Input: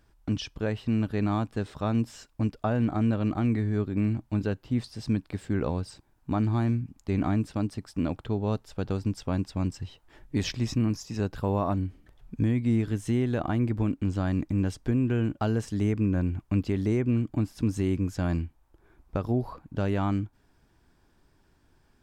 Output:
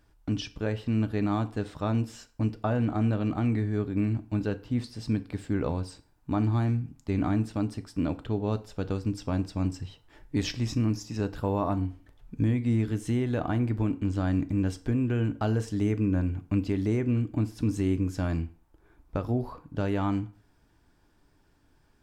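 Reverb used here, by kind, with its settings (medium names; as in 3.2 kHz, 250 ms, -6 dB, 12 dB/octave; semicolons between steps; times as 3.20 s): FDN reverb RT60 0.46 s, low-frequency decay 0.85×, high-frequency decay 0.8×, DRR 10 dB; trim -1 dB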